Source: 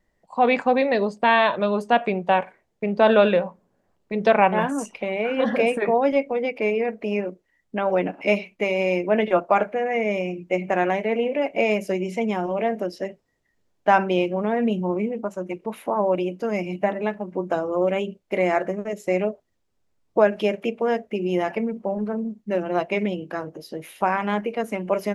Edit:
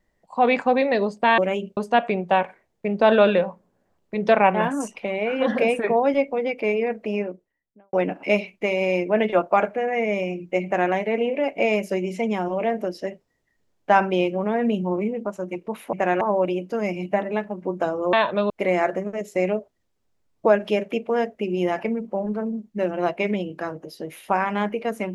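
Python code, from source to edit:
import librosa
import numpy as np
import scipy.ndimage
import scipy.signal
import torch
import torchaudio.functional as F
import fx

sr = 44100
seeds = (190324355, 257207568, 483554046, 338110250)

y = fx.studio_fade_out(x, sr, start_s=7.0, length_s=0.91)
y = fx.edit(y, sr, fx.swap(start_s=1.38, length_s=0.37, other_s=17.83, other_length_s=0.39),
    fx.duplicate(start_s=10.63, length_s=0.28, to_s=15.91), tone=tone)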